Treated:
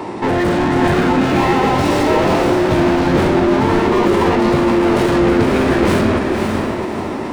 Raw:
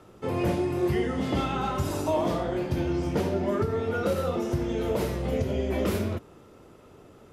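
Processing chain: overdrive pedal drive 33 dB, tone 2200 Hz, clips at -15.5 dBFS; diffused feedback echo 0.552 s, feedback 41%, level -3.5 dB; formant shift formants -5 st; gain +6.5 dB

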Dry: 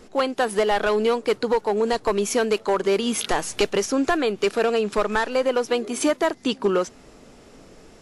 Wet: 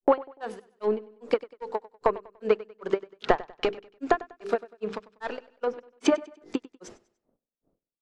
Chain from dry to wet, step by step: notches 50/100/150/200/250/300/350/400/450/500 Hz; transient shaper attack +10 dB, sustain -2 dB; low-pass opened by the level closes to 490 Hz, open at -18.5 dBFS; gate -38 dBFS, range -26 dB; bell 770 Hz +5 dB 2.8 oct; compressor 6:1, threshold -17 dBFS, peak gain reduction 12 dB; grains 0.205 s, grains 2.5/s, pitch spread up and down by 0 st; treble ducked by the level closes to 2100 Hz, closed at -25 dBFS; on a send: feedback echo 97 ms, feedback 37%, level -19 dB

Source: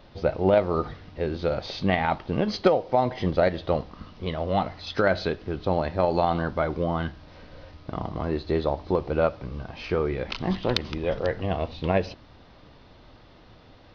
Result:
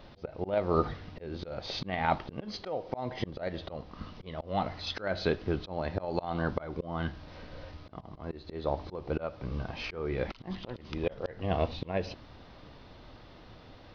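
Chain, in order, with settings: auto swell 0.347 s

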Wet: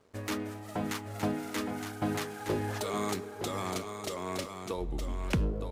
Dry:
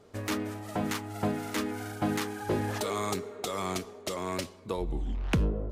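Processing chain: crossover distortion -60 dBFS; on a send: echo 0.916 s -7 dB; on the sum: gain -2.5 dB

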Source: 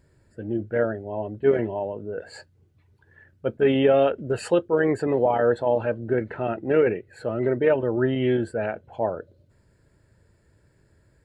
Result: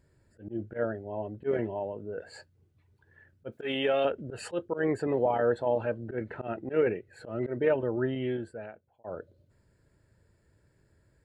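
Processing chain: 3.52–4.05 tilt +3.5 dB/oct; 7.85–9.04 fade out; auto swell 0.1 s; gain -5.5 dB

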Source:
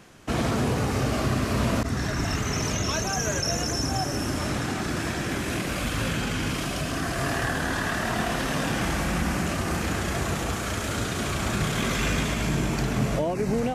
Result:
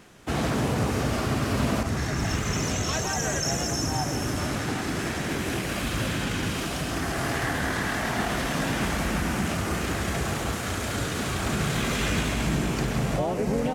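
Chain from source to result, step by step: echo 0.166 s -10.5 dB; harmoniser +3 st -5 dB; gain -2 dB

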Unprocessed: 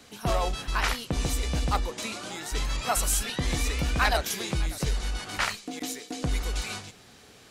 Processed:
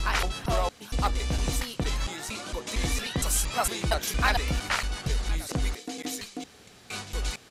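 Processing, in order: slices in reverse order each 0.23 s, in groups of 4; downsampling 32000 Hz

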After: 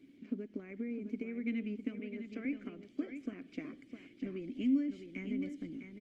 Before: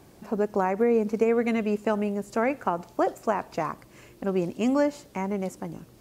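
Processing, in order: 1.99–2.45 three-band isolator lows -19 dB, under 260 Hz, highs -24 dB, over 6500 Hz; compressor 10:1, threshold -27 dBFS, peak gain reduction 10.5 dB; vowel filter i; echo 0.657 s -8.5 dB; gain +4.5 dB; Opus 24 kbps 48000 Hz

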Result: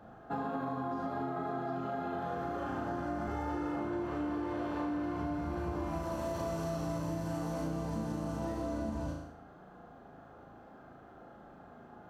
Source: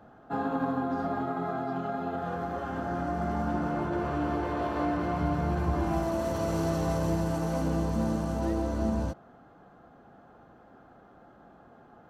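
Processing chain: 3.27–3.76 comb 2.3 ms, depth 91%; flutter echo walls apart 6.4 m, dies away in 0.54 s; compressor, threshold -32 dBFS, peak gain reduction 10.5 dB; gain -1 dB

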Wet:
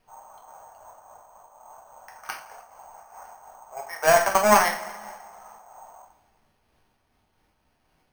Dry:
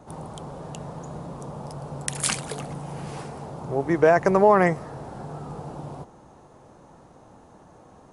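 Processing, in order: steep high-pass 680 Hz 36 dB/oct; gate -51 dBFS, range -16 dB; 0.72–3.25 LPF 1800 Hz 12 dB/oct; low-pass opened by the level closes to 1100 Hz, open at -21 dBFS; added harmonics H 2 -9 dB, 7 -21 dB, 8 -35 dB, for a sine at -9 dBFS; added noise pink -72 dBFS; two-slope reverb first 0.47 s, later 1.9 s, from -18 dB, DRR 0.5 dB; careless resampling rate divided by 6×, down filtered, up hold; noise-modulated level, depth 65%; gain +5.5 dB

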